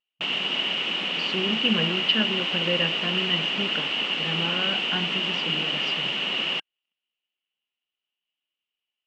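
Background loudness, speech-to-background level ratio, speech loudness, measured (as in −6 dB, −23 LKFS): −24.5 LKFS, −4.0 dB, −28.5 LKFS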